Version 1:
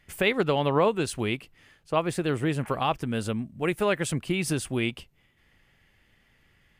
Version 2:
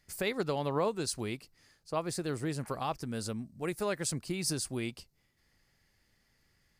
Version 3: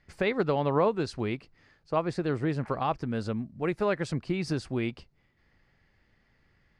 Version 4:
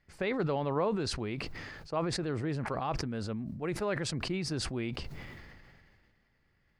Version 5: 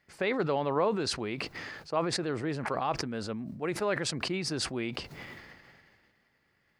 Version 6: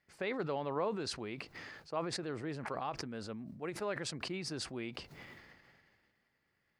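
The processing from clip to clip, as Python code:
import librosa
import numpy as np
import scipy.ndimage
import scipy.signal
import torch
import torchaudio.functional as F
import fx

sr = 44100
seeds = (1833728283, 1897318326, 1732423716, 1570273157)

y1 = fx.high_shelf_res(x, sr, hz=3800.0, db=6.5, q=3.0)
y1 = y1 * librosa.db_to_amplitude(-8.0)
y2 = scipy.signal.sosfilt(scipy.signal.butter(2, 2600.0, 'lowpass', fs=sr, output='sos'), y1)
y2 = y2 * librosa.db_to_amplitude(6.0)
y3 = fx.sustainer(y2, sr, db_per_s=27.0)
y3 = y3 * librosa.db_to_amplitude(-6.0)
y4 = fx.highpass(y3, sr, hz=270.0, slope=6)
y4 = y4 * librosa.db_to_amplitude(4.0)
y5 = fx.end_taper(y4, sr, db_per_s=210.0)
y5 = y5 * librosa.db_to_amplitude(-7.5)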